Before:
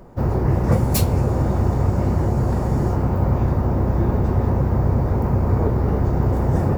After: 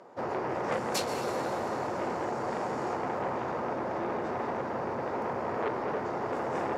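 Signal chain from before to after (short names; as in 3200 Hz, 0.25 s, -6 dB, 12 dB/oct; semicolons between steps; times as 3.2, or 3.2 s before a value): BPF 480–6300 Hz; plate-style reverb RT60 3.1 s, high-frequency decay 0.85×, pre-delay 0.11 s, DRR 6.5 dB; core saturation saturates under 1400 Hz; gain -1.5 dB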